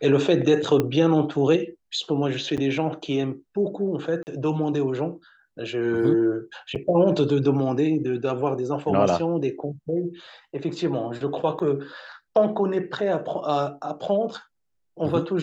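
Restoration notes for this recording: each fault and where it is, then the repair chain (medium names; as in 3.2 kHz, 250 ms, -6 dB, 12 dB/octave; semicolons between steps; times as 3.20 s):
0.80 s: pop -10 dBFS
2.57–2.58 s: dropout 7.3 ms
4.23–4.27 s: dropout 39 ms
6.75–6.76 s: dropout 7.4 ms
11.59–11.60 s: dropout 6.6 ms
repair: de-click; interpolate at 2.57 s, 7.3 ms; interpolate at 4.23 s, 39 ms; interpolate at 6.75 s, 7.4 ms; interpolate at 11.59 s, 6.6 ms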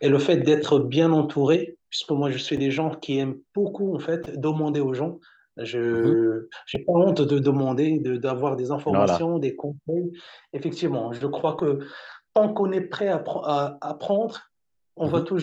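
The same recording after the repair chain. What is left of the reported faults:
0.80 s: pop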